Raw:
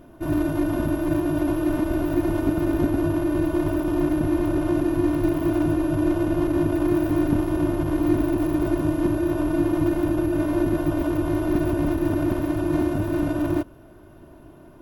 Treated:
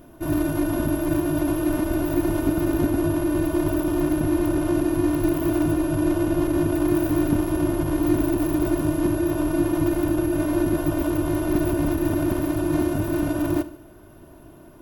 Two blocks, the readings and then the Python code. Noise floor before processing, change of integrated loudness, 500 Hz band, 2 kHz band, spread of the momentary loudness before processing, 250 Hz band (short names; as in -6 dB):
-47 dBFS, 0.0 dB, 0.0 dB, +1.0 dB, 2 LU, 0.0 dB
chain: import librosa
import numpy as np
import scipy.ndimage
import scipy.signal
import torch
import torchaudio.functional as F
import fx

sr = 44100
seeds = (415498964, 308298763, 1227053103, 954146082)

y = fx.high_shelf(x, sr, hz=5800.0, db=9.5)
y = fx.echo_feedback(y, sr, ms=73, feedback_pct=48, wet_db=-16.5)